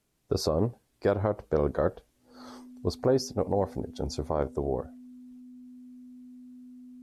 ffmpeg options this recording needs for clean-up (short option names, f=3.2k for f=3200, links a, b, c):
-af "bandreject=f=250:w=30"